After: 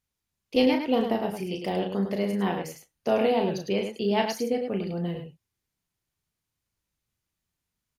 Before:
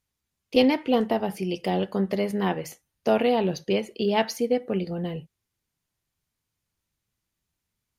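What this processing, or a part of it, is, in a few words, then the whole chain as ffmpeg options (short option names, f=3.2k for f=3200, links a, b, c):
slapback doubling: -filter_complex "[0:a]asplit=3[a][b][c];[b]adelay=35,volume=-6dB[d];[c]adelay=104,volume=-6.5dB[e];[a][d][e]amix=inputs=3:normalize=0,volume=-3.5dB"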